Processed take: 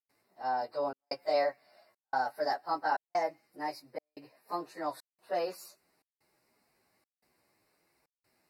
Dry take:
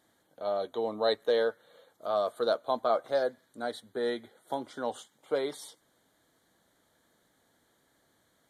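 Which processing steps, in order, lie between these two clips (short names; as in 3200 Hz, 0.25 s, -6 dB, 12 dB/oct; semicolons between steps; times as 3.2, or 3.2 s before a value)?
pitch shift by moving bins +4 st; step gate ".xxxxxxxxx." 162 bpm -60 dB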